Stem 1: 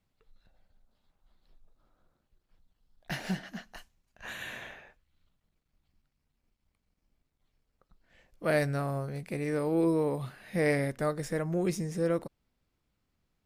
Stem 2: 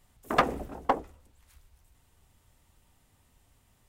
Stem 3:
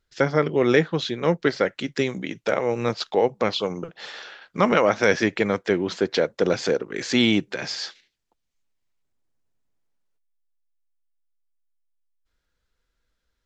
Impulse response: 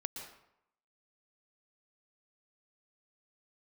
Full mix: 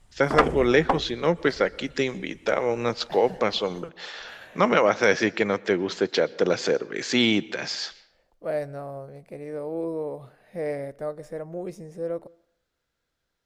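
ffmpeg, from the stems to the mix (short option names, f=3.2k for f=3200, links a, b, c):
-filter_complex "[0:a]equalizer=f=580:w=0.89:g=13,volume=-12.5dB,asplit=2[a][b];[b]volume=-20.5dB[c];[1:a]lowpass=f=10k:w=0.5412,lowpass=f=10k:w=1.3066,volume=2.5dB[d];[2:a]highpass=150,equalizer=f=210:t=o:w=1.5:g=-3,volume=-1.5dB,asplit=2[e][f];[f]volume=-14.5dB[g];[3:a]atrim=start_sample=2205[h];[c][g]amix=inputs=2:normalize=0[i];[i][h]afir=irnorm=-1:irlink=0[j];[a][d][e][j]amix=inputs=4:normalize=0,lowshelf=f=92:g=7"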